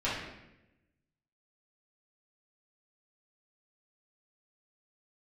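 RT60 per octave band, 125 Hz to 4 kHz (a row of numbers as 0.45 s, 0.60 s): 1.3 s, 1.2 s, 1.0 s, 0.80 s, 0.90 s, 0.75 s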